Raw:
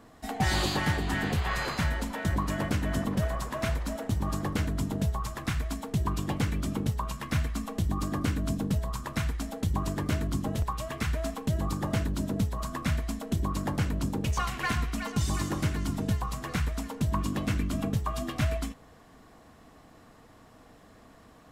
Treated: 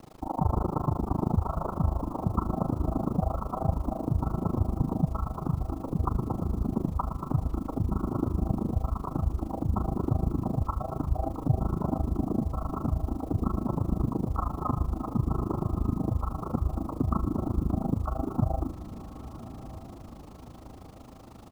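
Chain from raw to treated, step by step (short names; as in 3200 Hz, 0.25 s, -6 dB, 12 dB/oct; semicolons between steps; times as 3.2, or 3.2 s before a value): steep low-pass 1100 Hz 96 dB/oct; dynamic EQ 460 Hz, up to -7 dB, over -56 dBFS, Q 7.4; in parallel at -1 dB: compressor 12:1, threshold -35 dBFS, peak gain reduction 13.5 dB; on the sum: harmoniser -4 st -9 dB, +3 st 0 dB; bit-crush 9-bit; AM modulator 26 Hz, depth 100%; on a send: diffused feedback echo 1.179 s, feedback 46%, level -14 dB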